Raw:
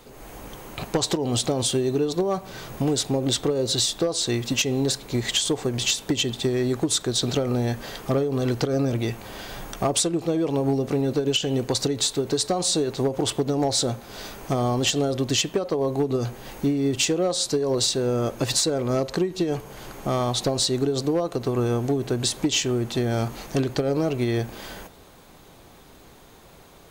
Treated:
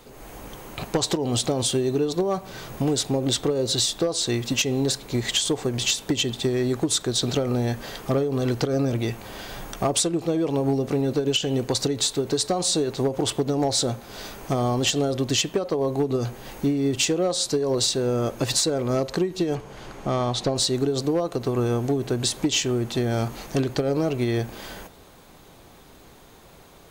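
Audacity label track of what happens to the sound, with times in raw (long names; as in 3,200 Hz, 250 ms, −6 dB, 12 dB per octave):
19.550000	20.560000	high-frequency loss of the air 55 metres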